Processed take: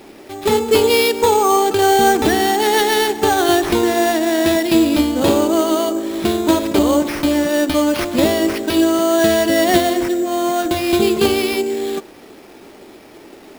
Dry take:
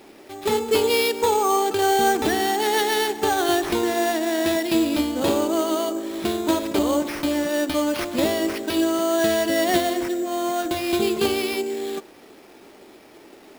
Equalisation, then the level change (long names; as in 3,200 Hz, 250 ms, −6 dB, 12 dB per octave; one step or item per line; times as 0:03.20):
low-shelf EQ 210 Hz +5 dB
+5.5 dB